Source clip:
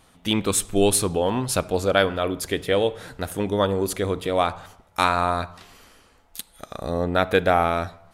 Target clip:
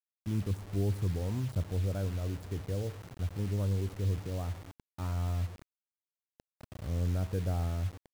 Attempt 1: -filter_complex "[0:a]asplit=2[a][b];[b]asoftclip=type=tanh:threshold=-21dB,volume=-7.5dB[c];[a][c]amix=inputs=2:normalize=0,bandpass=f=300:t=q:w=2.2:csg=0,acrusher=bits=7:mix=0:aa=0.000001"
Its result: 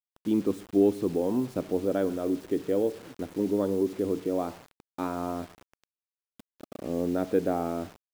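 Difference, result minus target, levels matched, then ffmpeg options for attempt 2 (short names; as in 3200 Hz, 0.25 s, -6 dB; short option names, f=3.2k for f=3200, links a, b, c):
125 Hz band -15.5 dB
-filter_complex "[0:a]asplit=2[a][b];[b]asoftclip=type=tanh:threshold=-21dB,volume=-7.5dB[c];[a][c]amix=inputs=2:normalize=0,bandpass=f=90:t=q:w=2.2:csg=0,acrusher=bits=7:mix=0:aa=0.000001"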